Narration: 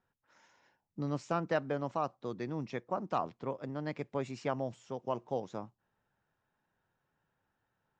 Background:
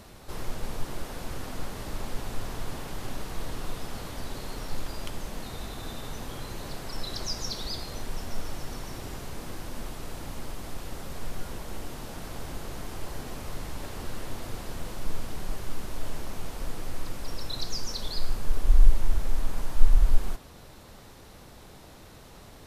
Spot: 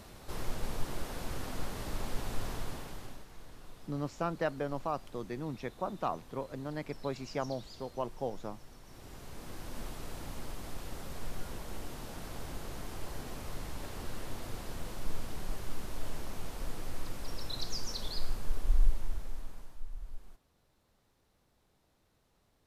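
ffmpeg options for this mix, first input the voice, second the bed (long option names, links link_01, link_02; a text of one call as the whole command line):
ffmpeg -i stem1.wav -i stem2.wav -filter_complex "[0:a]adelay=2900,volume=-1dB[link_01];[1:a]volume=10dB,afade=type=out:start_time=2.49:duration=0.77:silence=0.188365,afade=type=in:start_time=8.83:duration=0.98:silence=0.237137,afade=type=out:start_time=18.05:duration=1.78:silence=0.112202[link_02];[link_01][link_02]amix=inputs=2:normalize=0" out.wav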